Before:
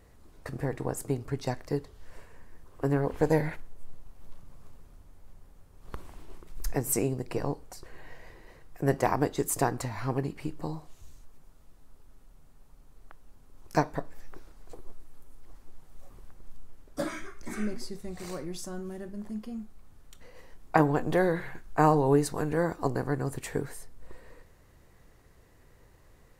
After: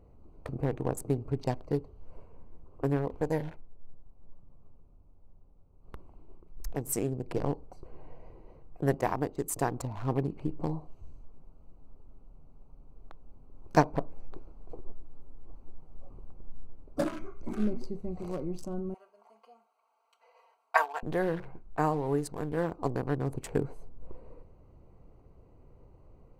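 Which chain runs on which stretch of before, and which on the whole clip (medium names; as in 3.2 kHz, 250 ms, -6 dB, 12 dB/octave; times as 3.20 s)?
18.94–21.03 s: high-pass 790 Hz 24 dB/octave + comb 4.4 ms, depth 97%
whole clip: local Wiener filter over 25 samples; gain riding within 5 dB 0.5 s; trim -2 dB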